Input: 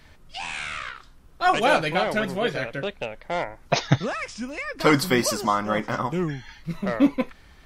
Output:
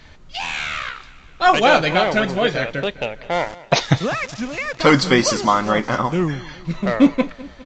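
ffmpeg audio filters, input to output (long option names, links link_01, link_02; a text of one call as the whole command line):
ffmpeg -i in.wav -filter_complex "[0:a]equalizer=frequency=3700:width_type=o:width=0.77:gain=2,bandreject=frequency=5200:width=22,asettb=1/sr,asplit=3[link_01][link_02][link_03];[link_01]atrim=end=3.334[link_04];[link_02]atrim=start=3.33:end=5.71,asetpts=PTS-STARTPTS,afade=type=in:duration=0.004:curve=qsin,afade=type=out:start_time=2.376:duration=0.004:curve=qsin,aeval=exprs='val(0)*gte(abs(val(0)),0.0141)':channel_layout=same[link_05];[link_03]atrim=start=5.706[link_06];[link_04][link_05]acrossfade=duration=0.004:curve1=hsin:curve2=qsin[link_07];[link_07][link_06]acrossfade=duration=0.004:curve1=qsin:curve2=hsin,aecho=1:1:204|408|612|816|1020:0.1|0.057|0.0325|0.0185|0.0106,alimiter=level_in=7dB:limit=-1dB:release=50:level=0:latency=1,volume=-1dB" -ar 16000 -c:a pcm_alaw out.wav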